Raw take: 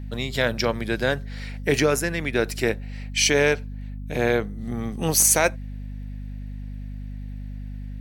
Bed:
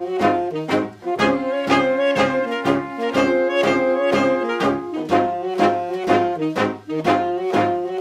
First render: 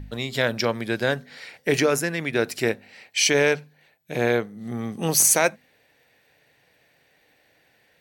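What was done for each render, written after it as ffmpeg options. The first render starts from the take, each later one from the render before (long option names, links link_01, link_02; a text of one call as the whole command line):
ffmpeg -i in.wav -af "bandreject=frequency=50:width_type=h:width=4,bandreject=frequency=100:width_type=h:width=4,bandreject=frequency=150:width_type=h:width=4,bandreject=frequency=200:width_type=h:width=4,bandreject=frequency=250:width_type=h:width=4" out.wav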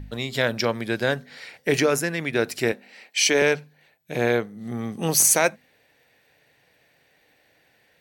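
ffmpeg -i in.wav -filter_complex "[0:a]asettb=1/sr,asplit=3[link_01][link_02][link_03];[link_01]atrim=end=2.724[link_04];[link_02]atrim=start=2.72:end=3.42,asetpts=PTS-STARTPTS,afade=type=in:duration=0.004:curve=qsin,afade=type=out:start_time=0.696:duration=0.004:curve=qsin,highpass=frequency=180:width=0.5412,highpass=frequency=180:width=1.3066[link_05];[link_03]atrim=start=3.416[link_06];[link_04][link_05]acrossfade=duration=0.004:curve1=hsin:curve2=qsin[link_07];[link_07][link_06]acrossfade=duration=0.004:curve1=qsin:curve2=hsin" out.wav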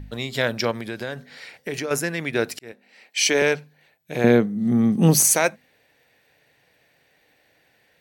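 ffmpeg -i in.wav -filter_complex "[0:a]asettb=1/sr,asplit=3[link_01][link_02][link_03];[link_01]atrim=end=0.714[link_04];[link_02]atrim=start=0.71:end=1.91,asetpts=PTS-STARTPTS,afade=type=in:duration=0.004:curve=qsin,afade=type=out:start_time=1.196:duration=0.004:curve=qsin,acompressor=threshold=-27dB:ratio=3:attack=3.2:release=140:knee=1:detection=peak[link_05];[link_03]atrim=start=1.906[link_06];[link_04][link_05]acrossfade=duration=0.004:curve1=hsin:curve2=qsin[link_07];[link_07][link_06]acrossfade=duration=0.004:curve1=qsin:curve2=hsin,asettb=1/sr,asplit=3[link_08][link_09][link_10];[link_08]atrim=end=4.244[link_11];[link_09]atrim=start=4.24:end=5.2,asetpts=PTS-STARTPTS,afade=type=in:duration=0.004:curve=qsin,afade=type=out:start_time=0.956:duration=0.004:curve=qsin,equalizer=frequency=200:width_type=o:width=1.7:gain=14[link_12];[link_10]atrim=start=5.196[link_13];[link_11][link_12]acrossfade=duration=0.004:curve1=hsin:curve2=qsin[link_14];[link_14][link_13]acrossfade=duration=0.004:curve1=qsin:curve2=hsin,asplit=2[link_15][link_16];[link_15]atrim=end=2.59,asetpts=PTS-STARTPTS,afade=type=out:start_time=2.586:duration=0.004:curve=hsin[link_17];[link_16]atrim=start=2.59,asetpts=PTS-STARTPTS,afade=type=in:duration=0.65[link_18];[link_17][link_18]concat=n=2:v=0:a=1" out.wav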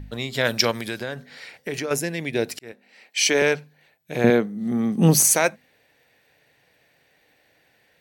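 ffmpeg -i in.wav -filter_complex "[0:a]asettb=1/sr,asplit=3[link_01][link_02][link_03];[link_01]atrim=end=0.454[link_04];[link_02]atrim=start=0.45:end=0.99,asetpts=PTS-STARTPTS,afade=type=in:duration=0.004:curve=qsin,afade=type=out:start_time=0.536:duration=0.004:curve=qsin,highshelf=frequency=2800:gain=11[link_05];[link_03]atrim=start=0.986[link_06];[link_04][link_05]acrossfade=duration=0.004:curve1=hsin:curve2=qsin[link_07];[link_07][link_06]acrossfade=duration=0.004:curve1=qsin:curve2=hsin,asettb=1/sr,asplit=3[link_08][link_09][link_10];[link_08]atrim=end=1.934[link_11];[link_09]atrim=start=1.93:end=2.49,asetpts=PTS-STARTPTS,afade=type=in:duration=0.004:curve=qsin,afade=type=out:start_time=0.556:duration=0.004:curve=qsin,equalizer=frequency=1300:width_type=o:width=0.61:gain=-13[link_12];[link_10]atrim=start=2.486[link_13];[link_11][link_12]acrossfade=duration=0.004:curve1=hsin:curve2=qsin[link_14];[link_14][link_13]acrossfade=duration=0.004:curve1=qsin:curve2=hsin,asettb=1/sr,asplit=3[link_15][link_16][link_17];[link_15]atrim=end=4.304[link_18];[link_16]atrim=start=4.3:end=4.98,asetpts=PTS-STARTPTS,afade=type=in:duration=0.004:curve=qsin,afade=type=out:start_time=0.676:duration=0.004:curve=qsin,highpass=frequency=300:poles=1[link_19];[link_17]atrim=start=4.976[link_20];[link_18][link_19]acrossfade=duration=0.004:curve1=hsin:curve2=qsin[link_21];[link_21][link_20]acrossfade=duration=0.004:curve1=qsin:curve2=hsin" out.wav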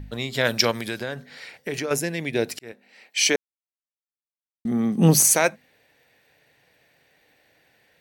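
ffmpeg -i in.wav -filter_complex "[0:a]asplit=3[link_01][link_02][link_03];[link_01]atrim=end=3.36,asetpts=PTS-STARTPTS,afade=type=out:start_time=3.356:duration=0.004:curve=hsin[link_04];[link_02]atrim=start=3.36:end=4.65,asetpts=PTS-STARTPTS,volume=0[link_05];[link_03]atrim=start=4.65,asetpts=PTS-STARTPTS,afade=type=in:duration=0.004:curve=hsin[link_06];[link_04][link_05][link_06]concat=n=3:v=0:a=1" out.wav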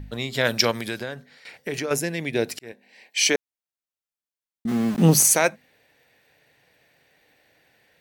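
ffmpeg -i in.wav -filter_complex "[0:a]asettb=1/sr,asplit=3[link_01][link_02][link_03];[link_01]atrim=end=2.664[link_04];[link_02]atrim=start=2.66:end=3.22,asetpts=PTS-STARTPTS,afade=type=in:duration=0.004:curve=qsin,afade=type=out:start_time=0.556:duration=0.004:curve=qsin,asuperstop=centerf=1300:order=8:qfactor=4.2[link_05];[link_03]atrim=start=3.216[link_06];[link_04][link_05]acrossfade=duration=0.004:curve1=hsin:curve2=qsin[link_07];[link_07][link_06]acrossfade=duration=0.004:curve1=qsin:curve2=hsin,asplit=3[link_08][link_09][link_10];[link_08]afade=type=out:start_time=4.67:duration=0.02[link_11];[link_09]aeval=exprs='val(0)*gte(abs(val(0)),0.0335)':channel_layout=same,afade=type=in:start_time=4.67:duration=0.02,afade=type=out:start_time=5.26:duration=0.02[link_12];[link_10]afade=type=in:start_time=5.26:duration=0.02[link_13];[link_11][link_12][link_13]amix=inputs=3:normalize=0,asplit=2[link_14][link_15];[link_14]atrim=end=1.45,asetpts=PTS-STARTPTS,afade=type=out:start_time=0.96:duration=0.49:silence=0.223872[link_16];[link_15]atrim=start=1.45,asetpts=PTS-STARTPTS,afade=type=in:duration=0.004:curve=hsin:silence=0.223872[link_17];[link_16][link_17]concat=n=2:v=0:a=1" out.wav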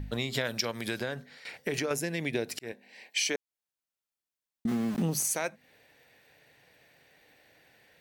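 ffmpeg -i in.wav -af "acompressor=threshold=-27dB:ratio=8" out.wav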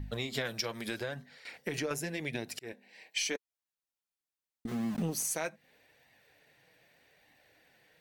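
ffmpeg -i in.wav -af "aeval=exprs='0.224*(cos(1*acos(clip(val(0)/0.224,-1,1)))-cos(1*PI/2))+0.0126*(cos(2*acos(clip(val(0)/0.224,-1,1)))-cos(2*PI/2))':channel_layout=same,flanger=delay=1:depth=5.4:regen=-36:speed=0.82:shape=sinusoidal" out.wav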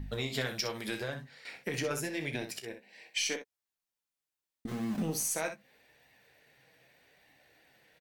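ffmpeg -i in.wav -filter_complex "[0:a]asplit=2[link_01][link_02];[link_02]adelay=15,volume=-10dB[link_03];[link_01][link_03]amix=inputs=2:normalize=0,aecho=1:1:32|62:0.211|0.335" out.wav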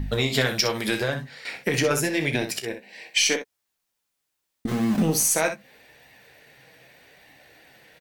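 ffmpeg -i in.wav -af "volume=11.5dB" out.wav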